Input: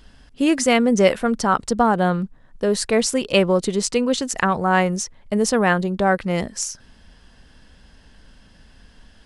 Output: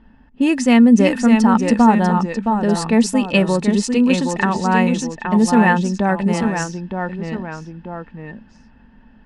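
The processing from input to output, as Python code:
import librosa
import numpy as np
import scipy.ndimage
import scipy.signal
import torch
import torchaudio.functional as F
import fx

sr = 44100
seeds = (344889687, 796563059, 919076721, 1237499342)

y = fx.echo_pitch(x, sr, ms=560, semitones=-1, count=2, db_per_echo=-6.0)
y = fx.small_body(y, sr, hz=(230.0, 880.0, 1800.0, 2600.0), ring_ms=50, db=13)
y = fx.env_lowpass(y, sr, base_hz=1600.0, full_db=-9.0)
y = y * 10.0 ** (-3.0 / 20.0)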